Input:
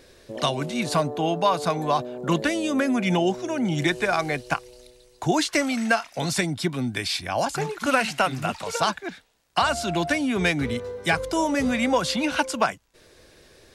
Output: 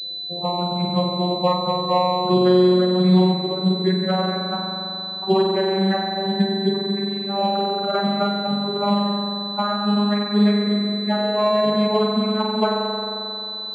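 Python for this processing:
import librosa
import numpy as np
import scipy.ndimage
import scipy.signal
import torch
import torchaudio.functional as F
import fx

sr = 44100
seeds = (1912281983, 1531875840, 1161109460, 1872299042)

y = fx.vocoder_glide(x, sr, note=53, semitones=4)
y = fx.spec_topn(y, sr, count=16)
y = fx.hum_notches(y, sr, base_hz=60, count=7)
y = fx.rev_spring(y, sr, rt60_s=2.8, pass_ms=(44,), chirp_ms=45, drr_db=-2.0)
y = fx.pwm(y, sr, carrier_hz=4000.0)
y = F.gain(torch.from_numpy(y), 3.5).numpy()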